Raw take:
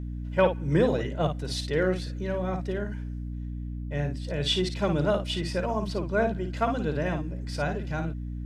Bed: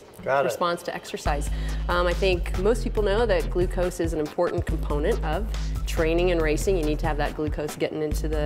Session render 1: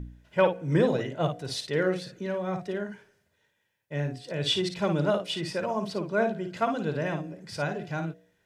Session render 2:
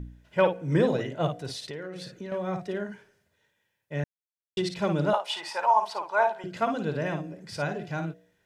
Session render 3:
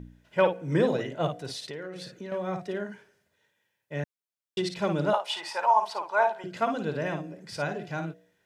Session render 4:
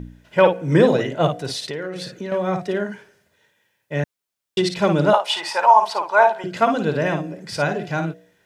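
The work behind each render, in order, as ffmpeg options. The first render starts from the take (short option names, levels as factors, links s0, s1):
-af "bandreject=f=60:t=h:w=4,bandreject=f=120:t=h:w=4,bandreject=f=180:t=h:w=4,bandreject=f=240:t=h:w=4,bandreject=f=300:t=h:w=4,bandreject=f=360:t=h:w=4,bandreject=f=420:t=h:w=4,bandreject=f=480:t=h:w=4,bandreject=f=540:t=h:w=4,bandreject=f=600:t=h:w=4,bandreject=f=660:t=h:w=4,bandreject=f=720:t=h:w=4"
-filter_complex "[0:a]asettb=1/sr,asplit=3[s0][s1][s2];[s0]atrim=end=1.494[s3];[s1]atrim=start=1.49:end=2.32,asetpts=PTS-STARTPTS,afade=t=in:d=0.004:c=qsin,afade=t=out:st=0.826:d=0.004:c=qsin,acompressor=threshold=0.0224:ratio=10:attack=3.2:release=140:knee=1:detection=peak[s4];[s2]atrim=start=2.316[s5];[s3][s4]acrossfade=d=0.004:c1=hsin:c2=qsin[s6];[s6][s5]acrossfade=d=0.004:c1=qsin:c2=hsin,asettb=1/sr,asplit=3[s7][s8][s9];[s7]atrim=end=5.134[s10];[s8]atrim=start=5.13:end=6.44,asetpts=PTS-STARTPTS,afade=t=in:d=0.004:c=qsin,afade=t=out:st=1.306:d=0.004:c=qsin,highpass=f=870:t=q:w=8.2[s11];[s9]atrim=start=6.436[s12];[s10][s11]acrossfade=d=0.004:c1=hsin:c2=qsin[s13];[s13][s12]acrossfade=d=0.004:c1=qsin:c2=hsin,asplit=3[s14][s15][s16];[s14]atrim=end=4.04,asetpts=PTS-STARTPTS,afade=t=out:st=4.036:d=0.004:c=hsin[s17];[s15]atrim=start=4.04:end=4.57,asetpts=PTS-STARTPTS,volume=0[s18];[s16]atrim=start=4.57,asetpts=PTS-STARTPTS,afade=t=in:d=0.004:c=hsin[s19];[s17][s18][s19]concat=n=3:v=0:a=1"
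-af "lowshelf=f=83:g=-11.5"
-af "volume=2.99,alimiter=limit=0.794:level=0:latency=1"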